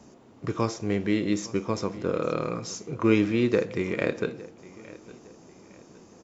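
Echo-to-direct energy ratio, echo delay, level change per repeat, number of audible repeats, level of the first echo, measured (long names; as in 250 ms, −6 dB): −19.5 dB, 860 ms, −9.0 dB, 2, −20.0 dB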